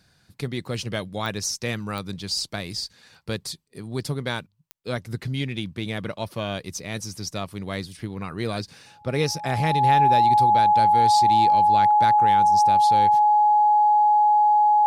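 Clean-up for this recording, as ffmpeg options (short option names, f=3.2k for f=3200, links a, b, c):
-af "adeclick=t=4,bandreject=f=840:w=30"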